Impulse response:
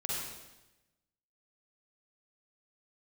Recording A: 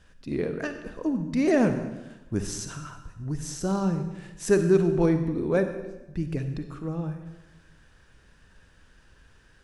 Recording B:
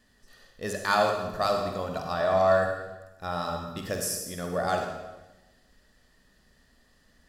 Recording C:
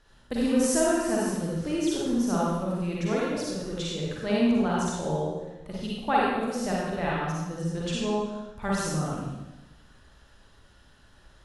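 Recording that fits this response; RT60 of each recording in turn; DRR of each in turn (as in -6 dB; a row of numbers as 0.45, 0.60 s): C; 1.0, 1.0, 1.0 s; 7.5, 2.5, -5.5 dB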